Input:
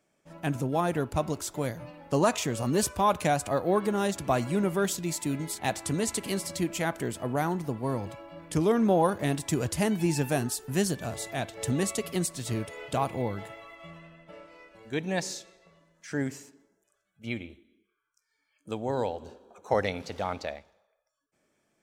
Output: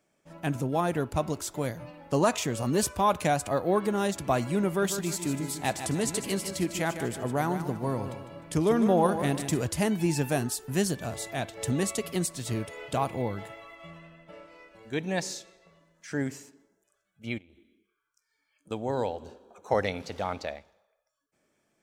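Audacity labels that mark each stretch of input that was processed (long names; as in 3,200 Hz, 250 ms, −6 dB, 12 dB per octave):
4.670000	9.620000	repeating echo 152 ms, feedback 41%, level −9.5 dB
17.380000	18.710000	downward compressor 12 to 1, threshold −52 dBFS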